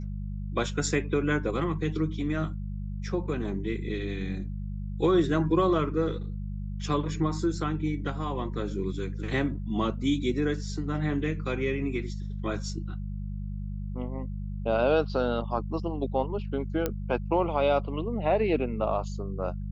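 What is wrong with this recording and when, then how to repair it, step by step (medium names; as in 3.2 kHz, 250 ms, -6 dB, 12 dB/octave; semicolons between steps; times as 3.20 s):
hum 50 Hz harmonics 4 -34 dBFS
16.86 s: pop -13 dBFS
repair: de-click; de-hum 50 Hz, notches 4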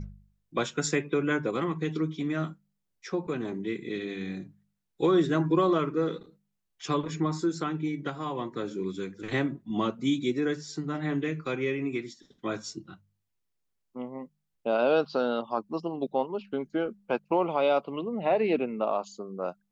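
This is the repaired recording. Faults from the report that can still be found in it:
nothing left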